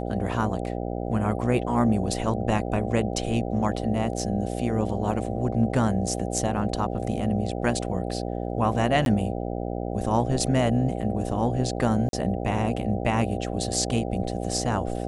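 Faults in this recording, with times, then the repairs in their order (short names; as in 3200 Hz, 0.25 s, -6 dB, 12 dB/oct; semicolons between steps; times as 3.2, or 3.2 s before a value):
buzz 60 Hz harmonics 13 -30 dBFS
9.05–9.06 gap 12 ms
12.09–12.13 gap 42 ms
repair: de-hum 60 Hz, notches 13; interpolate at 9.05, 12 ms; interpolate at 12.09, 42 ms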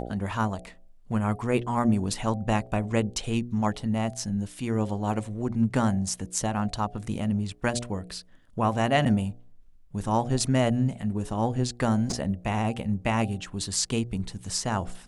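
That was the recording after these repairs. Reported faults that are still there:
none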